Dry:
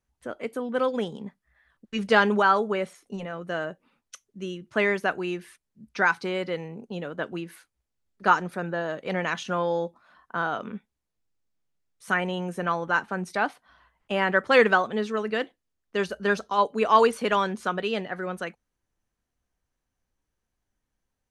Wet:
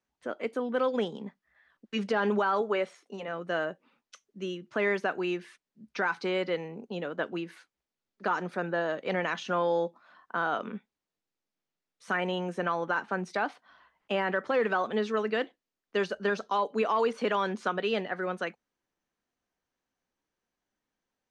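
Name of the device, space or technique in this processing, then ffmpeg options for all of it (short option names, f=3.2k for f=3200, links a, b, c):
DJ mixer with the lows and highs turned down: -filter_complex "[0:a]deesser=1,asettb=1/sr,asplit=3[a][b][c];[a]atrim=end=2.614[d];[b]atrim=start=2.61:end=3.28,asetpts=PTS-STARTPTS,afade=t=in:d=0.004:c=qsin,afade=t=out:st=0.666:d=0.004:c=qsin,bass=f=250:g=-9,treble=f=4k:g=-1[e];[c]atrim=start=3.276[f];[d][e]acrossfade=d=0.004:c1=hsin:c2=qsin[g];[g][f]acrossfade=d=0.004:c1=qsin:c2=hsin,acrossover=split=170 7300:gain=0.141 1 0.0708[h][i][j];[h][i][j]amix=inputs=3:normalize=0,alimiter=limit=-18dB:level=0:latency=1:release=94"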